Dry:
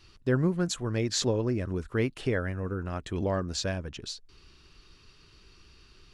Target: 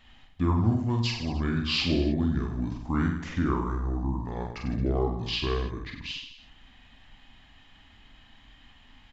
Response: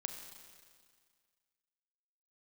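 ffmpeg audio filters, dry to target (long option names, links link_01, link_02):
-af "aecho=1:1:30|64.5|104.2|149.8|202.3:0.631|0.398|0.251|0.158|0.1,asetrate=29635,aresample=44100"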